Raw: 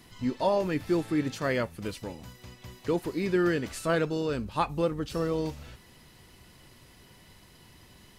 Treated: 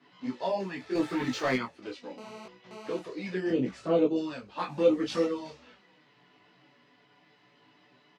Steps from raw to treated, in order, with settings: 3.50–4.16 s: tilt EQ -3 dB/octave; 4.67–5.25 s: waveshaping leveller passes 2; level-controlled noise filter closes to 2.9 kHz, open at -23 dBFS; touch-sensitive flanger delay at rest 7.5 ms, full sweep at -20 dBFS; high-pass 130 Hz 12 dB/octave; three-band isolator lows -15 dB, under 190 Hz, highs -19 dB, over 7.6 kHz; doubling 16 ms -5 dB; 0.95–1.56 s: waveshaping leveller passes 2; 2.18–2.99 s: mobile phone buzz -44 dBFS; detune thickener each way 27 cents; trim +2.5 dB

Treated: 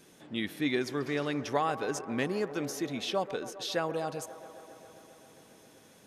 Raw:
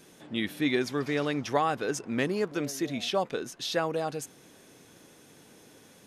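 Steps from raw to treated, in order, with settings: feedback echo behind a band-pass 134 ms, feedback 80%, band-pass 740 Hz, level -13 dB; trim -3 dB

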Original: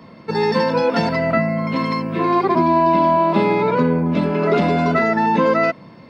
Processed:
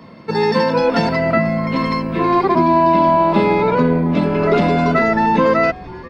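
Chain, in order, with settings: frequency-shifting echo 487 ms, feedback 56%, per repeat -150 Hz, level -20.5 dB; trim +2 dB

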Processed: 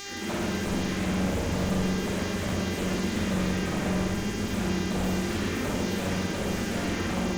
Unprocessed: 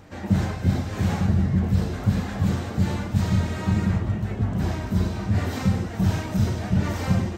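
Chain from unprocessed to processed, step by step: delay that grows with frequency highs early, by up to 434 ms; static phaser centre 300 Hz, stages 4; mains buzz 400 Hz, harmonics 17, -40 dBFS 0 dB/octave; wavefolder -27.5 dBFS; reverberation RT60 1.4 s, pre-delay 43 ms, DRR -3 dB

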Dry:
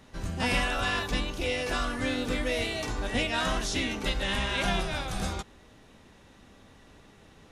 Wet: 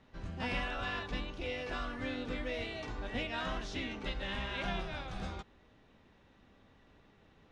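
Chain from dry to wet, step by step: low-pass 3.8 kHz 12 dB/octave; trim -8.5 dB

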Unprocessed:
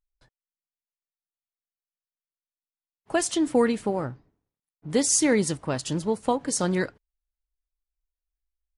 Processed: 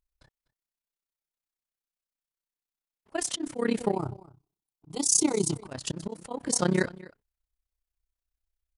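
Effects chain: 3.92–5.66 s: static phaser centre 350 Hz, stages 8; on a send: delay 242 ms -20.5 dB; on the sum: slow attack 191 ms; AM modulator 32 Hz, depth 85%; trim +4 dB

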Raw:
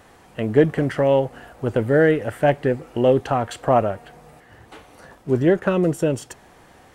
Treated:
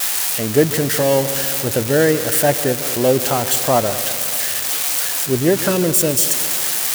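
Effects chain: zero-crossing glitches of -10 dBFS; high-pass 41 Hz; multi-head delay 73 ms, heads second and third, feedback 64%, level -16 dB; trim +1 dB

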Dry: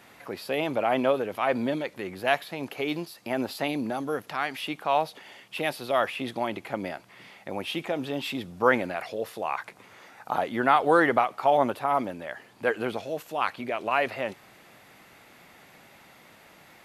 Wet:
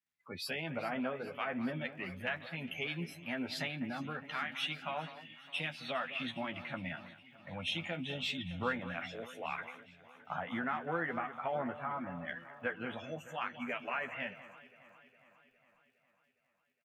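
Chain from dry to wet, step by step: spectral noise reduction 27 dB; low-pass that closes with the level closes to 1.9 kHz, closed at -22 dBFS; high-order bell 550 Hz -10.5 dB 2.3 oct; compression 4:1, threshold -36 dBFS, peak gain reduction 12.5 dB; crackle 83 per s -63 dBFS; doubling 12 ms -5 dB; on a send: echo whose repeats swap between lows and highs 205 ms, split 2.5 kHz, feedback 82%, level -12 dB; on the sum: three bands expanded up and down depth 40%

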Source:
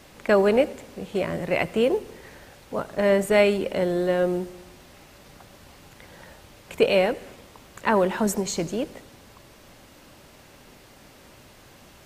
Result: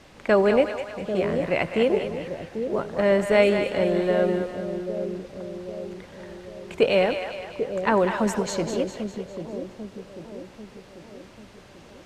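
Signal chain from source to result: distance through air 56 m; two-band feedback delay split 600 Hz, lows 792 ms, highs 202 ms, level -7 dB

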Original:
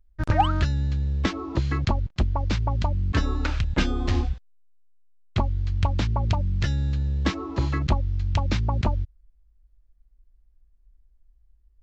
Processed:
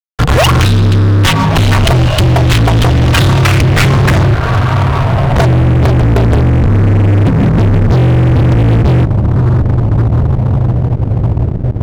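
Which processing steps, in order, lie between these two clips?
frequency shift -170 Hz; echo that smears into a reverb 1516 ms, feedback 54%, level -12.5 dB; in parallel at -2.5 dB: compression, threshold -32 dBFS, peak gain reduction 17 dB; on the sum: low-pass sweep 3.2 kHz -> 220 Hz, 3.25–7.13 s; fuzz box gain 32 dB, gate -40 dBFS; trim +7 dB

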